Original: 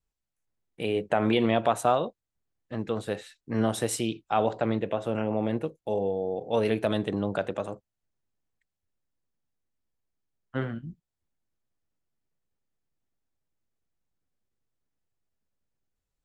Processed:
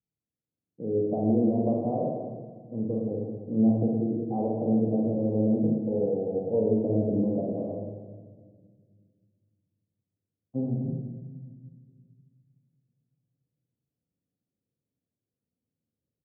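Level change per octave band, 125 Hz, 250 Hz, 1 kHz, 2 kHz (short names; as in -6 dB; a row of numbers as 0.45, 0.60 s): +3.5 dB, +5.0 dB, -9.0 dB, under -40 dB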